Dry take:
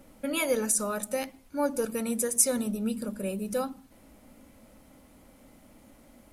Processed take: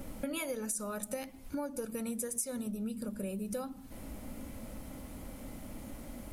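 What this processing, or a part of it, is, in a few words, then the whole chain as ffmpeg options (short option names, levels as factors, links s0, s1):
ASMR close-microphone chain: -af "lowshelf=f=170:g=8,acompressor=threshold=0.00794:ratio=8,highshelf=f=11000:g=4.5,volume=2.11"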